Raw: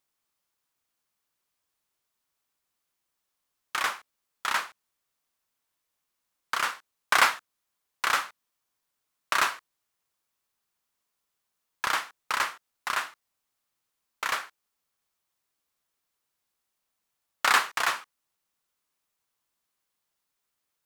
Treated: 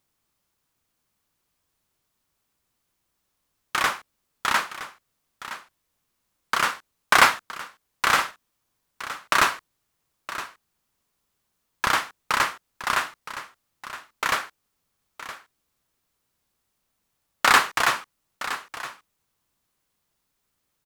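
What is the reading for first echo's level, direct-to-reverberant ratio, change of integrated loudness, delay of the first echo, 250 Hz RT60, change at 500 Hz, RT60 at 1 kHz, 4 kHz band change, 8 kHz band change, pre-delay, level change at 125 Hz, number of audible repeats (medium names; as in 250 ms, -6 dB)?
-13.5 dB, no reverb, +4.0 dB, 967 ms, no reverb, +7.5 dB, no reverb, +5.0 dB, +4.5 dB, no reverb, no reading, 1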